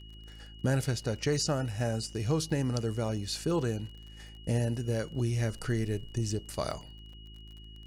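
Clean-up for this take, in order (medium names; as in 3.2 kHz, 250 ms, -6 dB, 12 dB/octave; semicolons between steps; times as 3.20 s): de-click; de-hum 53.7 Hz, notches 7; band-stop 2.9 kHz, Q 30; interpolate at 2.13/6.71/7.13 s, 4 ms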